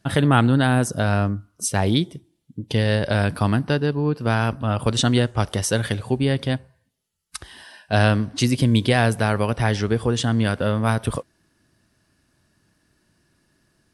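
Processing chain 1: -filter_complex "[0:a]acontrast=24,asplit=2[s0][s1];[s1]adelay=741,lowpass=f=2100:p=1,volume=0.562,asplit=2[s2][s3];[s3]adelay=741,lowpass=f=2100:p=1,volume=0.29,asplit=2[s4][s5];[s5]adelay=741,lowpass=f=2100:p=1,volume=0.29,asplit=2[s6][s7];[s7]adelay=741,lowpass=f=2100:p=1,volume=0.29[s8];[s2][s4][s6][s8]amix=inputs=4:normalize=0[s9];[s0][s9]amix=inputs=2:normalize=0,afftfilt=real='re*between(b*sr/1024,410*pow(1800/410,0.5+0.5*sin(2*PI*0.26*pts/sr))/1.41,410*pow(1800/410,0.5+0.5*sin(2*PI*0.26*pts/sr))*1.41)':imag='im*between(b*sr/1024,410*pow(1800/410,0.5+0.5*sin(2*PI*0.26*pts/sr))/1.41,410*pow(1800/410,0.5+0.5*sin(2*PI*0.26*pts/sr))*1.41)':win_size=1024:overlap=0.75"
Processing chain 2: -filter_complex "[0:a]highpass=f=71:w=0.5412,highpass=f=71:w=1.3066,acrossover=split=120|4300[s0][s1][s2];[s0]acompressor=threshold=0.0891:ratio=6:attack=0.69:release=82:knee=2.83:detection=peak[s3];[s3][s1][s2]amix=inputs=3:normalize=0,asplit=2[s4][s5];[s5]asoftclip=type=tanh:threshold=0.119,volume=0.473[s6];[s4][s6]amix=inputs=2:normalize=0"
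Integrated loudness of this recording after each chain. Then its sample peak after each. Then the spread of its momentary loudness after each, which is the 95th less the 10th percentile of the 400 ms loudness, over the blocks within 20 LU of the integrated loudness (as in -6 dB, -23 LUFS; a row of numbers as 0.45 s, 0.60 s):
-26.0 LUFS, -19.0 LUFS; -6.5 dBFS, -2.5 dBFS; 11 LU, 10 LU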